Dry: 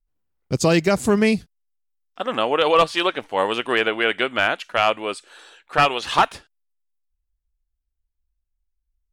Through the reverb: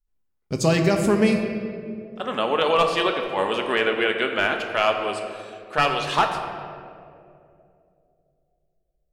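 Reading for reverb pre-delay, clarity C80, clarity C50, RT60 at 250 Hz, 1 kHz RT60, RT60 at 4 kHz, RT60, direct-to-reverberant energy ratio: 5 ms, 6.5 dB, 5.5 dB, 3.1 s, 2.2 s, 1.3 s, 2.7 s, 3.5 dB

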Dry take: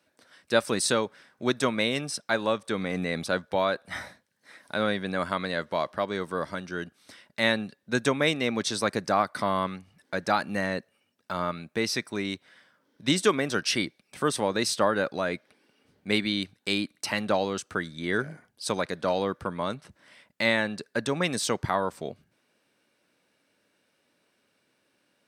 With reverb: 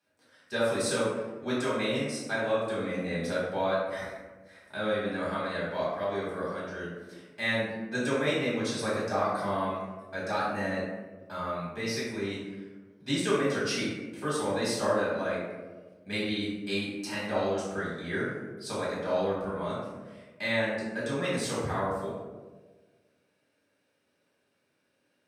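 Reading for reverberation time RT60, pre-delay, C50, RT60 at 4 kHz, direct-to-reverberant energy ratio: 1.4 s, 3 ms, 0.0 dB, 0.65 s, -8.5 dB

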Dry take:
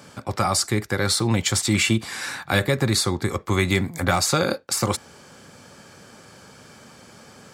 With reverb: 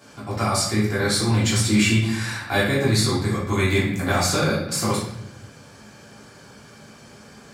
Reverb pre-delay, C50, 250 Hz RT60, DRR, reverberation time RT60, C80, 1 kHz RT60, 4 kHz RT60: 3 ms, 3.0 dB, 1.2 s, -8.0 dB, 0.75 s, 7.0 dB, 0.70 s, 0.65 s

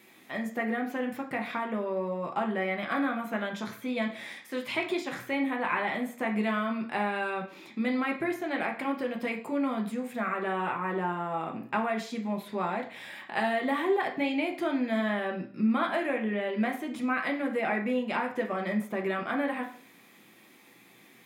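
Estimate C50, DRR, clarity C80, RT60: 10.0 dB, 1.0 dB, 14.5 dB, 0.55 s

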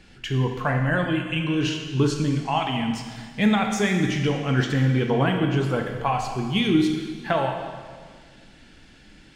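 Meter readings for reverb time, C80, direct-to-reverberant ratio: 1.8 s, 6.0 dB, 3.0 dB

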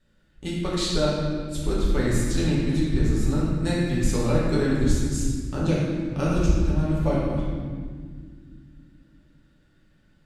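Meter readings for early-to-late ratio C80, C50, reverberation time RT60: 0.5 dB, -1.5 dB, no single decay rate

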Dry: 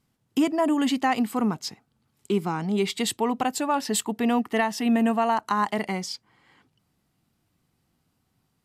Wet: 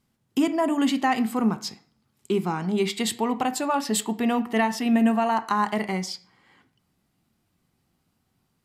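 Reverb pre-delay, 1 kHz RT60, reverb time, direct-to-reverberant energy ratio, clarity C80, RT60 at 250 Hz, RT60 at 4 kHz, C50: 3 ms, 0.50 s, 0.50 s, 9.0 dB, 19.5 dB, 0.60 s, 0.45 s, 16.0 dB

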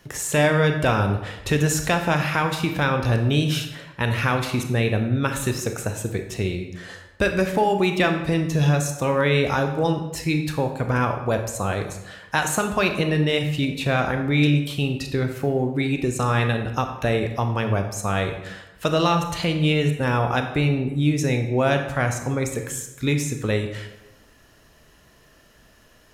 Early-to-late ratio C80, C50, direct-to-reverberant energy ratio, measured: 10.0 dB, 7.5 dB, 5.5 dB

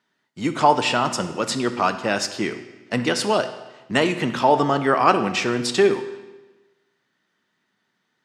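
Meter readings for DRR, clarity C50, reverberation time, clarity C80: 9.0 dB, 11.0 dB, 1.2 s, 13.0 dB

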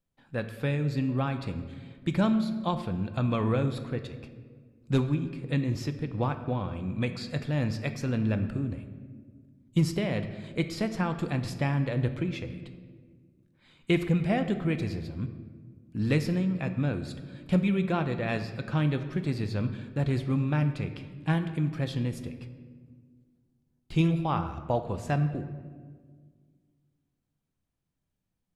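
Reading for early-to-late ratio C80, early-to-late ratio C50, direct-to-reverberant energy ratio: 12.0 dB, 10.5 dB, 8.0 dB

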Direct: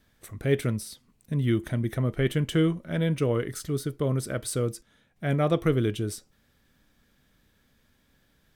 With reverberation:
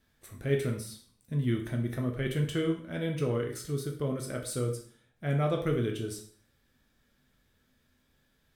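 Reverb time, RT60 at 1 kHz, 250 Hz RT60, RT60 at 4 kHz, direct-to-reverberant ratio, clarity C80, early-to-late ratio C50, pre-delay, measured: 0.50 s, 0.55 s, 0.50 s, 0.45 s, 2.0 dB, 12.5 dB, 8.5 dB, 5 ms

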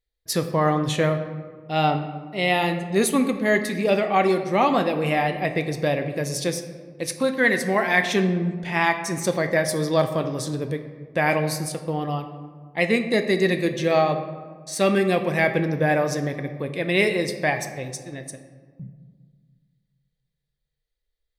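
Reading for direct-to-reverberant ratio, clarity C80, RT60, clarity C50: 7.0 dB, 11.0 dB, 1.7 s, 9.5 dB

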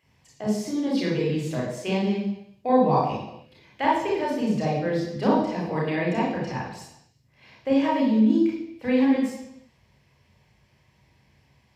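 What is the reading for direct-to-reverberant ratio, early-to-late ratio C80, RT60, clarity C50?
-4.5 dB, 5.5 dB, 0.80 s, 1.0 dB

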